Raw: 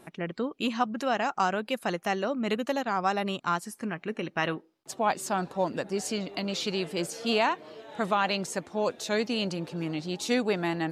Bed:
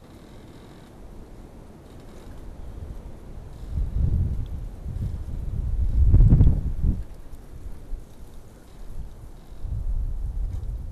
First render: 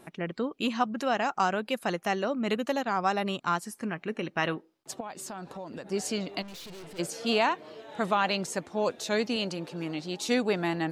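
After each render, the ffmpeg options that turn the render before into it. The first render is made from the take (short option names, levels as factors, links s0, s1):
-filter_complex "[0:a]asettb=1/sr,asplit=3[s0][s1][s2];[s0]atrim=end=5.004[s3];[s1]atrim=start=5:end=5.91,asetpts=PTS-STARTPTS,afade=t=in:d=0.004:c=qsin,afade=t=out:st=0.906:d=0.004:c=qsin,acompressor=threshold=0.0158:ratio=6:attack=3.2:release=140:knee=1:detection=peak[s4];[s2]atrim=start=5.906[s5];[s3][s4]acrossfade=d=0.004:c1=hsin:c2=qsin[s6];[s6][s5]acrossfade=d=0.004:c1=qsin:c2=hsin,asplit=3[s7][s8][s9];[s7]afade=t=out:st=6.41:d=0.02[s10];[s8]aeval=exprs='(tanh(141*val(0)+0.35)-tanh(0.35))/141':c=same,afade=t=in:st=6.41:d=0.02,afade=t=out:st=6.98:d=0.02[s11];[s9]afade=t=in:st=6.98:d=0.02[s12];[s10][s11][s12]amix=inputs=3:normalize=0,asettb=1/sr,asplit=3[s13][s14][s15];[s13]atrim=end=9.364[s16];[s14]atrim=start=9.36:end=10.29,asetpts=PTS-STARTPTS,afade=t=in:d=0.004:c=qsin,afade=t=out:st=0.926:d=0.004:c=qsin,lowshelf=f=130:g=-10.5[s17];[s15]atrim=start=10.286[s18];[s16][s17]acrossfade=d=0.004:c1=hsin:c2=qsin[s19];[s19][s18]acrossfade=d=0.004:c1=qsin:c2=hsin"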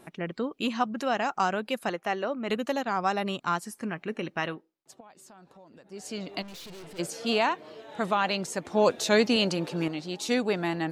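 -filter_complex "[0:a]asettb=1/sr,asplit=3[s0][s1][s2];[s0]atrim=end=1.894[s3];[s1]atrim=start=1.89:end=2.5,asetpts=PTS-STARTPTS,afade=t=in:d=0.004:c=qsin,afade=t=out:st=0.606:d=0.004:c=qsin,bass=f=250:g=-8,treble=f=4000:g=-9[s4];[s2]atrim=start=2.496[s5];[s3][s4]acrossfade=d=0.004:c1=hsin:c2=qsin[s6];[s6][s5]acrossfade=d=0.004:c1=qsin:c2=hsin,asplit=5[s7][s8][s9][s10][s11];[s7]atrim=end=4.73,asetpts=PTS-STARTPTS,afade=t=out:st=4.29:d=0.44:silence=0.237137[s12];[s8]atrim=start=4.73:end=5.95,asetpts=PTS-STARTPTS,volume=0.237[s13];[s9]atrim=start=5.95:end=8.652,asetpts=PTS-STARTPTS,afade=t=in:d=0.44:silence=0.237137[s14];[s10]atrim=start=8.648:end=9.882,asetpts=PTS-STARTPTS,volume=2[s15];[s11]atrim=start=9.878[s16];[s12][s13][s14]concat=n=3:v=0:a=1[s17];[s17][s15]acrossfade=d=0.004:c1=hsin:c2=hsin[s18];[s18][s16]acrossfade=d=0.004:c1=hsin:c2=hsin"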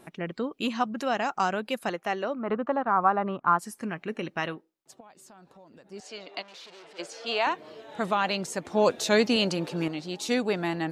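-filter_complex "[0:a]asettb=1/sr,asplit=3[s0][s1][s2];[s0]atrim=end=2.394[s3];[s1]atrim=start=2.39:end=3.59,asetpts=PTS-STARTPTS,afade=t=in:d=0.004:c=qsin,afade=t=out:st=1.196:d=0.004:c=qsin,lowpass=f=1200:t=q:w=2.4[s4];[s2]atrim=start=3.586[s5];[s3][s4]acrossfade=d=0.004:c1=hsin:c2=qsin[s6];[s6][s5]acrossfade=d=0.004:c1=qsin:c2=hsin,asettb=1/sr,asplit=3[s7][s8][s9];[s7]atrim=end=6.004[s10];[s8]atrim=start=6:end=7.47,asetpts=PTS-STARTPTS,afade=t=in:d=0.004:c=qsin,afade=t=out:st=1.466:d=0.004:c=qsin,highpass=500,lowpass=5300[s11];[s9]atrim=start=7.466[s12];[s10][s11]acrossfade=d=0.004:c1=hsin:c2=qsin[s13];[s13][s12]acrossfade=d=0.004:c1=qsin:c2=hsin"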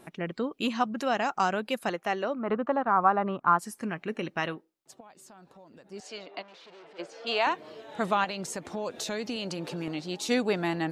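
-filter_complex "[0:a]asettb=1/sr,asplit=3[s0][s1][s2];[s0]atrim=end=6.264[s3];[s1]atrim=start=6.26:end=7.27,asetpts=PTS-STARTPTS,afade=t=in:d=0.004:c=qsin,afade=t=out:st=1.006:d=0.004:c=qsin,lowpass=f=1800:p=1[s4];[s2]atrim=start=7.266[s5];[s3][s4]acrossfade=d=0.004:c1=hsin:c2=qsin[s6];[s6][s5]acrossfade=d=0.004:c1=qsin:c2=hsin,asettb=1/sr,asplit=3[s7][s8][s9];[s7]atrim=end=8.244[s10];[s8]atrim=start=8.24:end=9.88,asetpts=PTS-STARTPTS,afade=t=in:d=0.004:c=qsin,afade=t=out:st=1.636:d=0.004:c=qsin,acompressor=threshold=0.0282:ratio=4:attack=3.2:release=140:knee=1:detection=peak[s11];[s9]atrim=start=9.876[s12];[s10][s11]acrossfade=d=0.004:c1=hsin:c2=qsin[s13];[s13][s12]acrossfade=d=0.004:c1=qsin:c2=hsin"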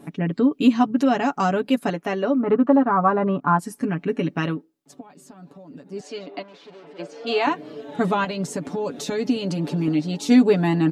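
-af "equalizer=f=230:t=o:w=1.6:g=14.5,aecho=1:1:7:0.76"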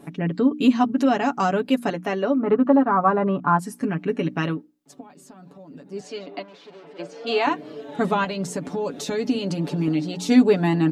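-af "bandreject=f=60:t=h:w=6,bandreject=f=120:t=h:w=6,bandreject=f=180:t=h:w=6,bandreject=f=240:t=h:w=6,bandreject=f=300:t=h:w=6"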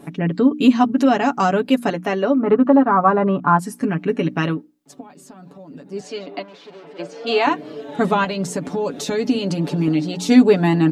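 -af "volume=1.58,alimiter=limit=0.794:level=0:latency=1"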